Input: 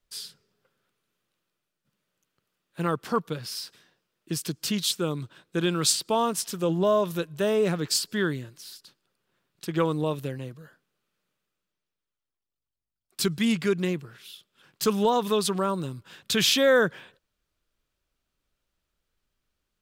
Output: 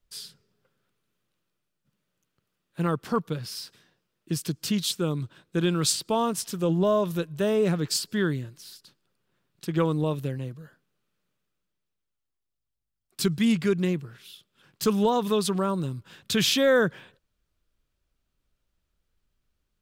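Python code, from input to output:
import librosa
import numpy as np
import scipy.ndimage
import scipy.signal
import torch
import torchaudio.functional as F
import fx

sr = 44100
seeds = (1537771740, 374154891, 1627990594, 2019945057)

y = fx.low_shelf(x, sr, hz=230.0, db=8.0)
y = F.gain(torch.from_numpy(y), -2.0).numpy()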